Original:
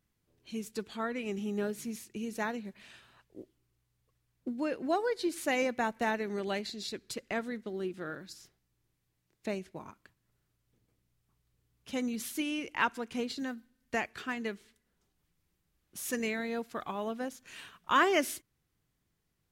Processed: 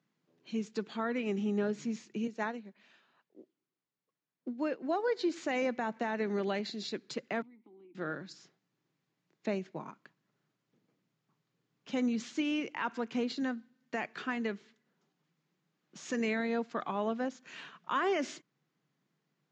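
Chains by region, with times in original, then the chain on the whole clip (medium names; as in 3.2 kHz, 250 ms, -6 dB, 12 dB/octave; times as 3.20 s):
2.27–5.08 s: high-pass 180 Hz + upward expansion, over -46 dBFS
7.42–7.95 s: vowel filter u + compression, threshold -55 dBFS + bass shelf 190 Hz -7.5 dB
whole clip: Chebyshev band-pass 140–7100 Hz, order 5; treble shelf 4.6 kHz -10 dB; peak limiter -26.5 dBFS; trim +3.5 dB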